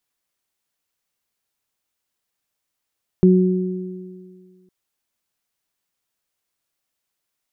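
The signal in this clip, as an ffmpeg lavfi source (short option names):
-f lavfi -i "aevalsrc='0.355*pow(10,-3*t/1.89)*sin(2*PI*184*t)+0.237*pow(10,-3*t/1.99)*sin(2*PI*368*t)':d=1.46:s=44100"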